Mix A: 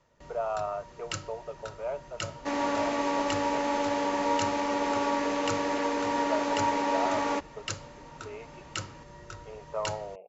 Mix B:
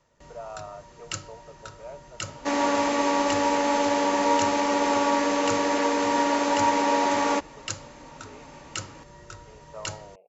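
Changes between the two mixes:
speech -8.0 dB; second sound +5.0 dB; master: remove air absorption 59 m

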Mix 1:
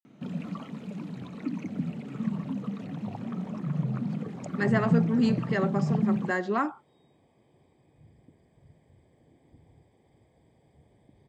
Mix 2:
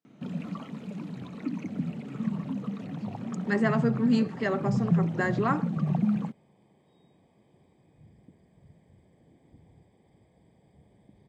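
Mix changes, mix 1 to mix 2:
speech: entry -1.10 s; second sound: add bell 190 Hz +8 dB 0.31 oct

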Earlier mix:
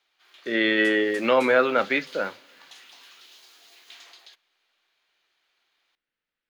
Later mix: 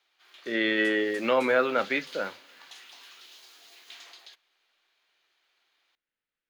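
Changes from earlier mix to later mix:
speech -4.0 dB; second sound -4.5 dB

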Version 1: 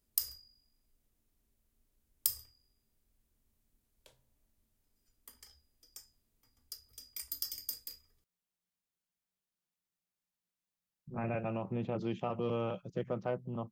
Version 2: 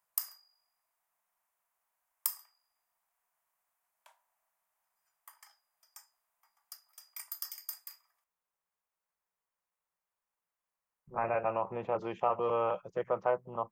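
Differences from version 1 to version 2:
background: add elliptic high-pass 680 Hz, stop band 40 dB; master: add graphic EQ 125/250/500/1000/2000/4000 Hz -8/-10/+5/+12/+4/-8 dB

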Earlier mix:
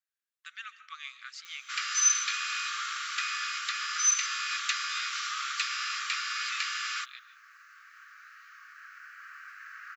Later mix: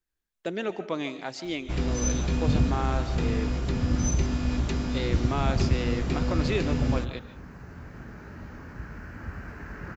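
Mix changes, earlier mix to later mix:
speech +4.0 dB; first sound -10.0 dB; master: remove brick-wall FIR high-pass 1100 Hz

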